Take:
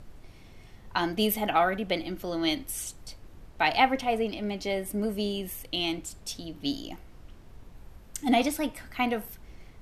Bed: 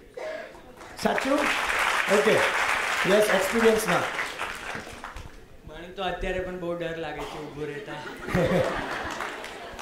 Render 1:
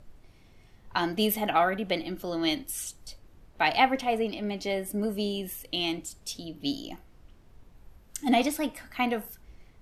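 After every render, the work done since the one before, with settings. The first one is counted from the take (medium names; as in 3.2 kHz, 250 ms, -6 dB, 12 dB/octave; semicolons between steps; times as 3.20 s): noise print and reduce 6 dB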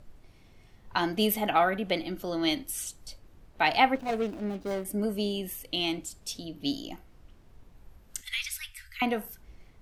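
3.95–4.85 s: median filter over 41 samples; 8.21–9.02 s: inverse Chebyshev band-stop 220–700 Hz, stop band 60 dB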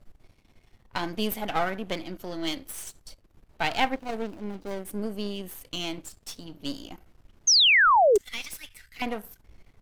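partial rectifier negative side -12 dB; 7.47–8.18 s: painted sound fall 380–6600 Hz -18 dBFS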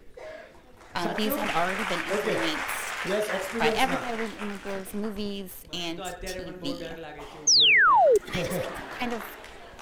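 add bed -7 dB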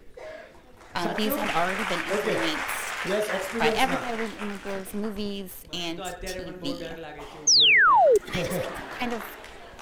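trim +1 dB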